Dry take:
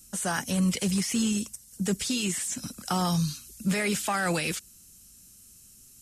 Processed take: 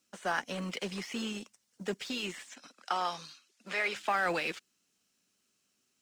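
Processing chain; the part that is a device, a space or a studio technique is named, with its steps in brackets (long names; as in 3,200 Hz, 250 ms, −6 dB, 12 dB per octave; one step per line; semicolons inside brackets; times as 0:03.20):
phone line with mismatched companding (band-pass filter 370–3,300 Hz; mu-law and A-law mismatch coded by A)
0:02.49–0:03.96: meter weighting curve A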